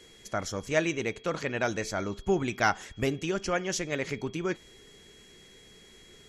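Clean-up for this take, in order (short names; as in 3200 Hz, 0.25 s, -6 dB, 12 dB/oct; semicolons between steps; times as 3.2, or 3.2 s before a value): notch 3300 Hz, Q 30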